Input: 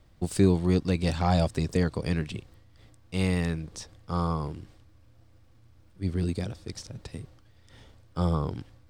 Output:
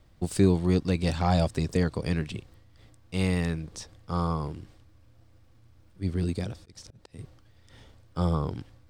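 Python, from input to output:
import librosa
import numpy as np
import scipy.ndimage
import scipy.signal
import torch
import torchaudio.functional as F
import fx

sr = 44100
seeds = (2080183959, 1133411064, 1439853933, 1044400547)

y = fx.auto_swell(x, sr, attack_ms=258.0, at=(6.54, 7.19))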